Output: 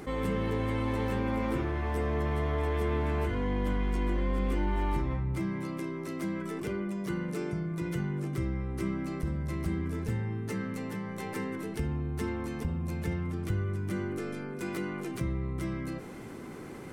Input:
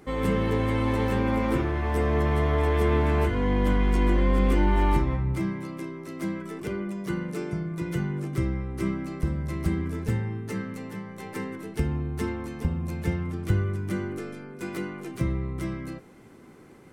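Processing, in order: fast leveller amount 50%; gain -8.5 dB

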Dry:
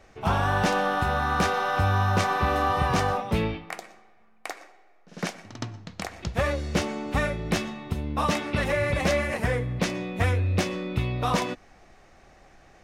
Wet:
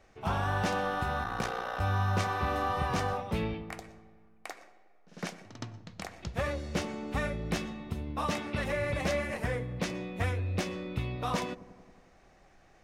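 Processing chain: dark delay 91 ms, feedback 70%, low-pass 620 Hz, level -14 dB; 1.23–1.81 ring modulator 30 Hz; gain -7 dB

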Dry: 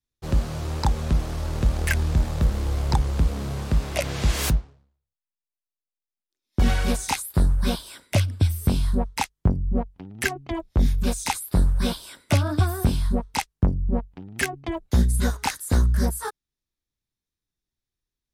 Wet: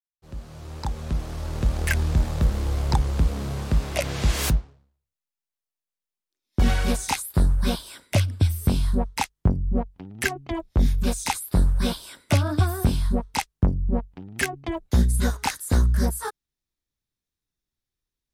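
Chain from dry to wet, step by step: opening faded in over 1.97 s

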